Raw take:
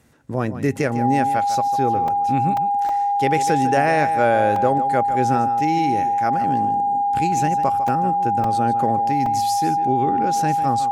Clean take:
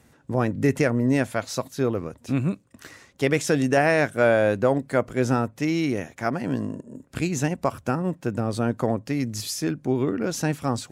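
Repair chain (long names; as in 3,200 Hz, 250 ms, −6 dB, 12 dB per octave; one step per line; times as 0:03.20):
notch filter 810 Hz, Q 30
repair the gap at 0:02.08/0:02.57/0:02.89/0:04.56/0:07.88/0:08.44/0:09.26, 3.2 ms
echo removal 151 ms −12.5 dB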